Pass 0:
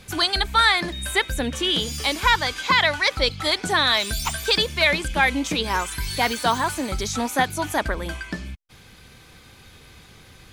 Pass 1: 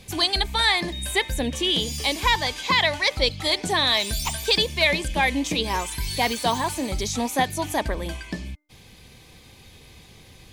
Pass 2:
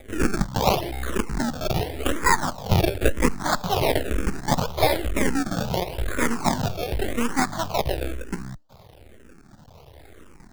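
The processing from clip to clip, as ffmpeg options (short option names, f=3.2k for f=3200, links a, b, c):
-af "equalizer=f=1.4k:w=3.7:g=-13.5,bandreject=f=299.6:t=h:w=4,bandreject=f=599.2:t=h:w=4,bandreject=f=898.8:t=h:w=4,bandreject=f=1.1984k:t=h:w=4,bandreject=f=1.498k:t=h:w=4,bandreject=f=1.7976k:t=h:w=4,bandreject=f=2.0972k:t=h:w=4"
-filter_complex "[0:a]acrusher=samples=30:mix=1:aa=0.000001:lfo=1:lforange=30:lforate=0.77,aeval=exprs='max(val(0),0)':c=same,asplit=2[a][b];[b]afreqshift=-0.99[c];[a][c]amix=inputs=2:normalize=1,volume=7dB"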